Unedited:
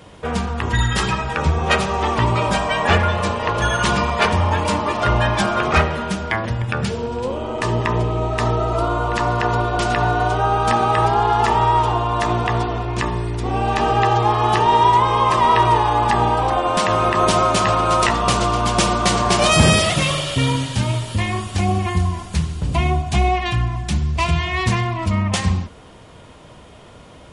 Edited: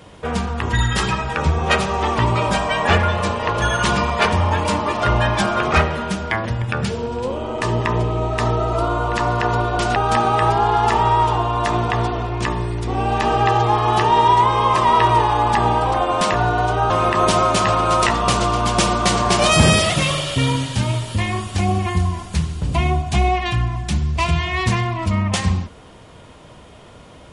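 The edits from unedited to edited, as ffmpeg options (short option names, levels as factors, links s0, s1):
-filter_complex "[0:a]asplit=4[s0][s1][s2][s3];[s0]atrim=end=9.962[s4];[s1]atrim=start=10.518:end=16.902[s5];[s2]atrim=start=9.958:end=10.522[s6];[s3]atrim=start=16.898[s7];[s4][s5]acrossfade=d=0.004:c1=hsin:c2=hsin[s8];[s8][s6]acrossfade=d=0.004:c1=hsin:c2=hsin[s9];[s9][s7]acrossfade=d=0.004:c1=hsin:c2=hsin"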